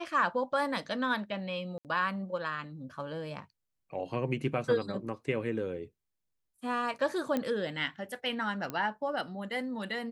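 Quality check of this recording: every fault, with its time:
0:01.78–0:01.85: drop-out 68 ms
0:07.37: click −18 dBFS
0:08.70: click −21 dBFS

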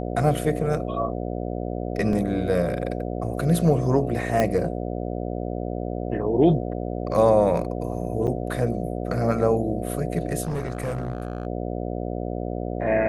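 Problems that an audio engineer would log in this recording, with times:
mains buzz 60 Hz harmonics 12 −29 dBFS
0:02.13: drop-out 2.4 ms
0:04.40: click −9 dBFS
0:08.27–0:08.28: drop-out 7.1 ms
0:10.43–0:11.47: clipping −23 dBFS

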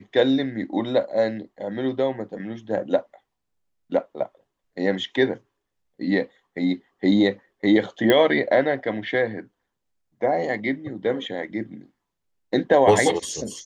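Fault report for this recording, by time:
0:08.10: click −6 dBFS

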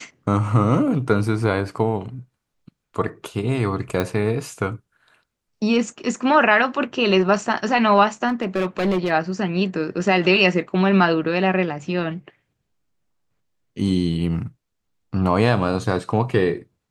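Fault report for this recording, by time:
0:04.00: click −9 dBFS
0:08.28–0:09.11: clipping −16 dBFS

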